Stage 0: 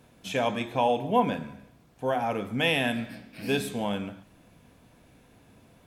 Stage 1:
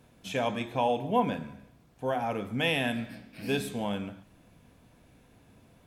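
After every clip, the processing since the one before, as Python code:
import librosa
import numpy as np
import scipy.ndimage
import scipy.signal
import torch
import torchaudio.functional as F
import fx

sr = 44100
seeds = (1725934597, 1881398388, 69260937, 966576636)

y = fx.low_shelf(x, sr, hz=140.0, db=3.5)
y = y * librosa.db_to_amplitude(-3.0)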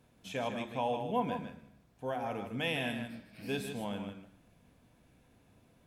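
y = x + 10.0 ** (-8.0 / 20.0) * np.pad(x, (int(155 * sr / 1000.0), 0))[:len(x)]
y = y * librosa.db_to_amplitude(-6.5)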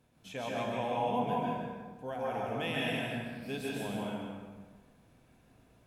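y = fx.rev_plate(x, sr, seeds[0], rt60_s=1.4, hf_ratio=0.6, predelay_ms=120, drr_db=-4.0)
y = y * librosa.db_to_amplitude(-3.5)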